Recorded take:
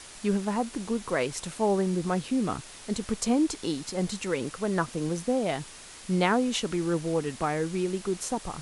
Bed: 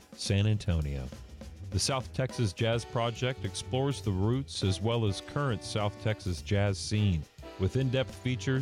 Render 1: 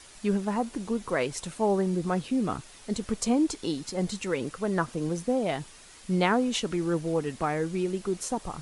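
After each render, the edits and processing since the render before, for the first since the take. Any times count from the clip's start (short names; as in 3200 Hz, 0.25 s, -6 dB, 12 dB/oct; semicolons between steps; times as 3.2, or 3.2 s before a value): denoiser 6 dB, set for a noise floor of -46 dBFS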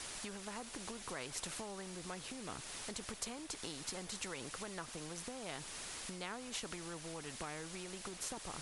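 compressor 4:1, threshold -37 dBFS, peak gain reduction 15 dB; spectral compressor 2:1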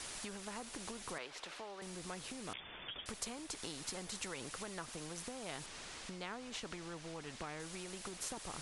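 1.18–1.82 three-band isolator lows -16 dB, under 320 Hz, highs -18 dB, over 4800 Hz; 2.53–3.06 inverted band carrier 3500 Hz; 5.66–7.6 air absorption 61 m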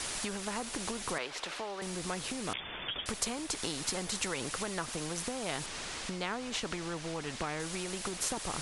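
gain +9 dB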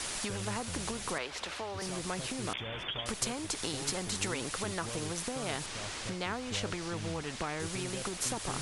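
add bed -14.5 dB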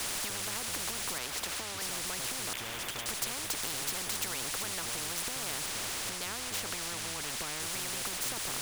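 sample leveller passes 2; spectral compressor 4:1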